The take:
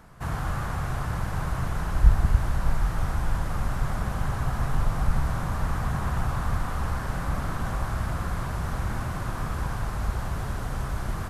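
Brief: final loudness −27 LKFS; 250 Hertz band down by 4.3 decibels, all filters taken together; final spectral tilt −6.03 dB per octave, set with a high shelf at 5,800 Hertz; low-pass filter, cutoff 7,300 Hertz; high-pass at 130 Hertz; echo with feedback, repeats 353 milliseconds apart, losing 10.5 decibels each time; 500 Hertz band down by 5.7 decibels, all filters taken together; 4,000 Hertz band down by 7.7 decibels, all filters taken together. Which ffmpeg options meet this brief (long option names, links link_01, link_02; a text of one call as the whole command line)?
ffmpeg -i in.wav -af "highpass=130,lowpass=7300,equalizer=frequency=250:width_type=o:gain=-4,equalizer=frequency=500:width_type=o:gain=-6.5,equalizer=frequency=4000:width_type=o:gain=-8.5,highshelf=frequency=5800:gain=-4,aecho=1:1:353|706|1059:0.299|0.0896|0.0269,volume=8.5dB" out.wav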